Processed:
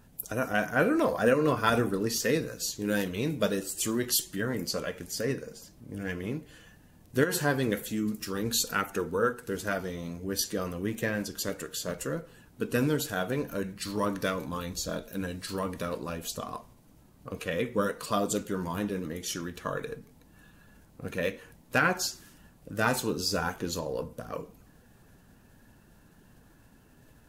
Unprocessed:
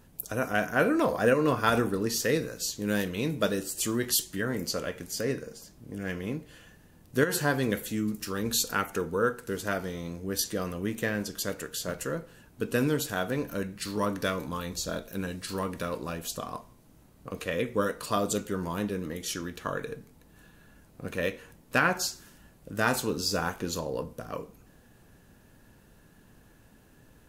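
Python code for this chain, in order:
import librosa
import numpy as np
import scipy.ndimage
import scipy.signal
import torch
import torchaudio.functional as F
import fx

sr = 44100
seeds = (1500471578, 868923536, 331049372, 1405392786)

y = fx.spec_quant(x, sr, step_db=15)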